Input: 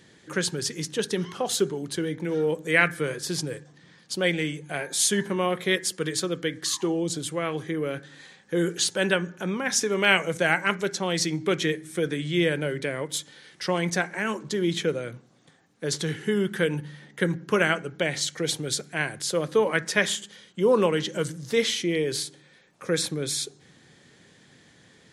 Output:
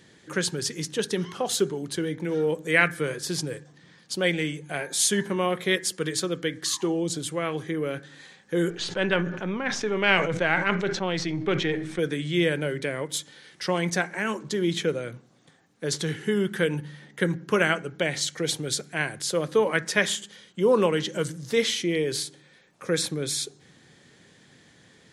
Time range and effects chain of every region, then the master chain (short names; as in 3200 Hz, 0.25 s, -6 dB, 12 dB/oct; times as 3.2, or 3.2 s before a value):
8.7–11.99 half-wave gain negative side -3 dB + LPF 3600 Hz + sustainer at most 62 dB/s
whole clip: dry